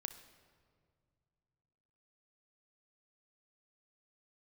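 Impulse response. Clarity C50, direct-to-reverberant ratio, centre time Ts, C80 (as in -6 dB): 10.5 dB, 7.0 dB, 16 ms, 12.5 dB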